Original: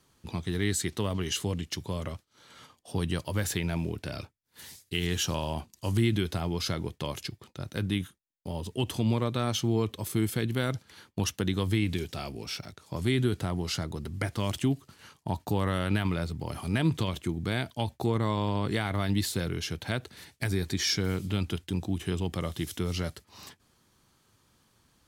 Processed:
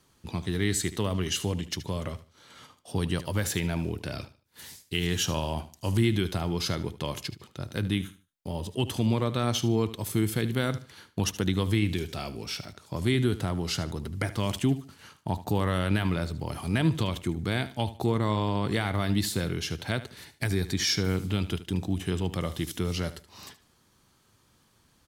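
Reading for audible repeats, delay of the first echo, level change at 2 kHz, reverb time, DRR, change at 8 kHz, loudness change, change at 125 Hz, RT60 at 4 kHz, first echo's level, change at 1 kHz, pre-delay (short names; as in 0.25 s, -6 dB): 2, 75 ms, +1.5 dB, none, none, +1.5 dB, +1.5 dB, +1.5 dB, none, -15.0 dB, +1.5 dB, none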